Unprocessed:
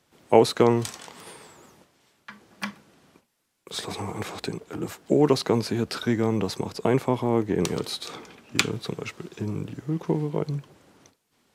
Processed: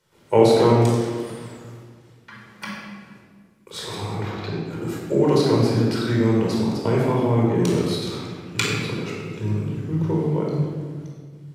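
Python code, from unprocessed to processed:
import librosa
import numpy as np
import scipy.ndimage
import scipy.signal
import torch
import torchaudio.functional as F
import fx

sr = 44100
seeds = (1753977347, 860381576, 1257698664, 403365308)

y = fx.moving_average(x, sr, points=5, at=(4.15, 4.65))
y = fx.room_shoebox(y, sr, seeds[0], volume_m3=1900.0, walls='mixed', distance_m=4.7)
y = y * librosa.db_to_amplitude(-5.0)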